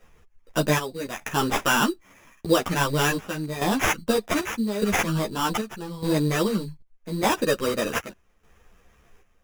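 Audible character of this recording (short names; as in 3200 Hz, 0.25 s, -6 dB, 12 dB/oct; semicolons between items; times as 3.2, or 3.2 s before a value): chopped level 0.83 Hz, depth 65%, duty 65%; aliases and images of a low sample rate 4300 Hz, jitter 0%; a shimmering, thickened sound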